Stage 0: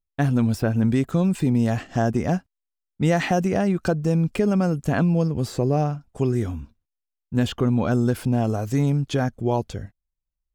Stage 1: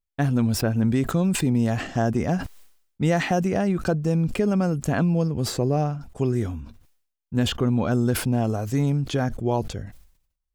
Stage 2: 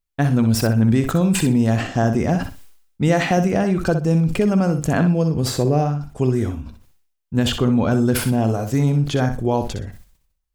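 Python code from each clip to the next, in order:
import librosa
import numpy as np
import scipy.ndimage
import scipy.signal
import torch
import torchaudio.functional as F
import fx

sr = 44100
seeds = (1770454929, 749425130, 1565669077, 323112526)

y1 = fx.sustainer(x, sr, db_per_s=90.0)
y1 = F.gain(torch.from_numpy(y1), -1.5).numpy()
y2 = fx.echo_feedback(y1, sr, ms=62, feedback_pct=21, wet_db=-8.5)
y2 = F.gain(torch.from_numpy(y2), 4.0).numpy()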